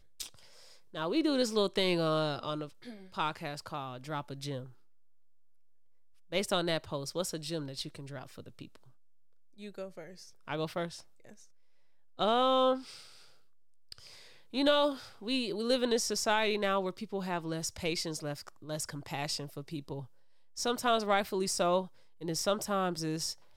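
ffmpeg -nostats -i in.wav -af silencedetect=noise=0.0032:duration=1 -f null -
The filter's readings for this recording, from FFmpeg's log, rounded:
silence_start: 4.73
silence_end: 6.32 | silence_duration: 1.59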